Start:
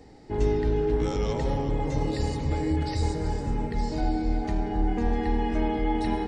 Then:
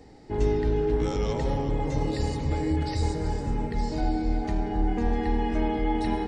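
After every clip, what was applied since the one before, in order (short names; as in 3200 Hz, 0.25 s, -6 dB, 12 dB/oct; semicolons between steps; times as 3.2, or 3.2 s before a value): nothing audible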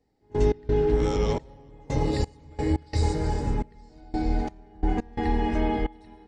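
reverse echo 88 ms -11.5 dB; step gate "..x.xxxx...xx" 87 bpm -24 dB; gain +2 dB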